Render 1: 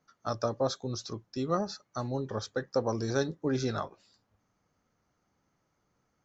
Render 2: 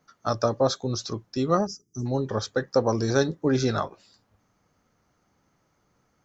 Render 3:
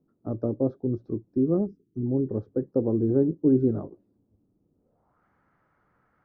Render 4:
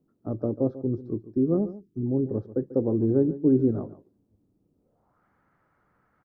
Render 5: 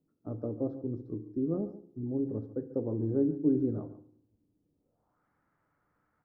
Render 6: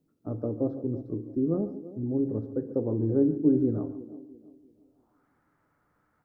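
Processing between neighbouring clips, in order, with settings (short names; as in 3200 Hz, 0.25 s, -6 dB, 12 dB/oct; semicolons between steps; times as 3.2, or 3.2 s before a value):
spectral gain 1.67–2.06, 470–4800 Hz -29 dB; gain +7 dB
low-pass sweep 330 Hz -> 1600 Hz, 4.74–5.25; gain -2 dB
echo 0.142 s -15.5 dB
FDN reverb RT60 0.65 s, low-frequency decay 1.25×, high-frequency decay 0.8×, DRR 9.5 dB; gain -8 dB
band-limited delay 0.336 s, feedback 34%, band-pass 410 Hz, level -14.5 dB; gain +4.5 dB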